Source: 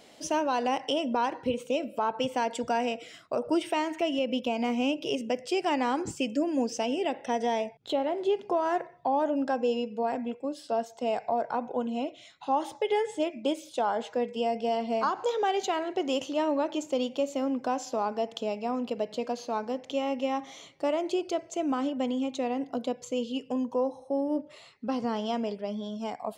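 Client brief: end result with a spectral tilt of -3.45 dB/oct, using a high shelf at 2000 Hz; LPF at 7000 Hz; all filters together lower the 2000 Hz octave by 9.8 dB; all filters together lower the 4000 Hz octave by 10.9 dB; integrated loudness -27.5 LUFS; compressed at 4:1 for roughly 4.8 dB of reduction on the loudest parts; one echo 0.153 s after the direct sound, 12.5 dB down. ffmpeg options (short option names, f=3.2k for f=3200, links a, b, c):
-af "lowpass=7k,highshelf=f=2k:g=-3.5,equalizer=f=2k:t=o:g=-9,equalizer=f=4k:t=o:g=-7.5,acompressor=threshold=-29dB:ratio=4,aecho=1:1:153:0.237,volume=7dB"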